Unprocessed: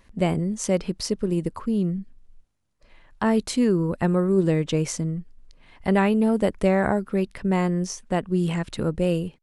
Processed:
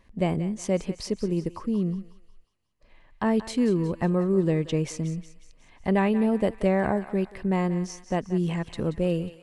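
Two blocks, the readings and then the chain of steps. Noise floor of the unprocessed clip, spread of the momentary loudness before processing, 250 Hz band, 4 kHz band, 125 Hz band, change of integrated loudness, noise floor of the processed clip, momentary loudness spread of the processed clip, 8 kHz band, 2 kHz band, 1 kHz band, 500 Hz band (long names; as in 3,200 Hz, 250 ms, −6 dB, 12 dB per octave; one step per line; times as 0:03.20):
−60 dBFS, 7 LU, −2.5 dB, −5.5 dB, −2.5 dB, −2.5 dB, −59 dBFS, 7 LU, −7.5 dB, −4.0 dB, −3.0 dB, −2.5 dB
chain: high-shelf EQ 4,600 Hz −7.5 dB
notch filter 1,400 Hz, Q 7.7
on a send: feedback echo with a high-pass in the loop 181 ms, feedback 55%, high-pass 920 Hz, level −12 dB
on the sum: level −2.5 dB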